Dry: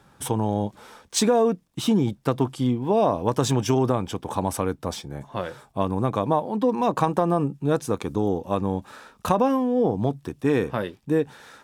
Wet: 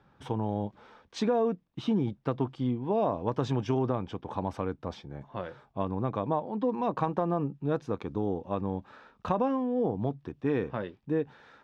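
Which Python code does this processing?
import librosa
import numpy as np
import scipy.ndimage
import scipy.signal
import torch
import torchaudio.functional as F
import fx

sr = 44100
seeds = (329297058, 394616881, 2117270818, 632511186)

y = fx.air_absorb(x, sr, metres=220.0)
y = y * librosa.db_to_amplitude(-6.5)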